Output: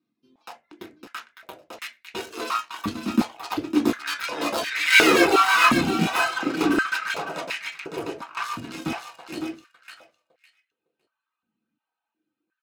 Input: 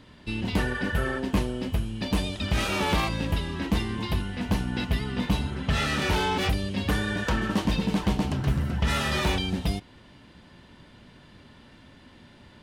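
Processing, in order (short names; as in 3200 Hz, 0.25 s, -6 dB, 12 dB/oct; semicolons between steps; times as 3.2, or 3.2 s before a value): Doppler pass-by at 5.11, 50 m/s, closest 5.3 m; reverb removal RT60 0.92 s; in parallel at -9.5 dB: fuzz box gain 52 dB, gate -54 dBFS; on the sum: reverb removal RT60 0.73 s; feedback echo 0.557 s, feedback 16%, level -6 dB; reverb RT60 0.25 s, pre-delay 3 ms, DRR 1 dB; stepped high-pass 2.8 Hz 230–2000 Hz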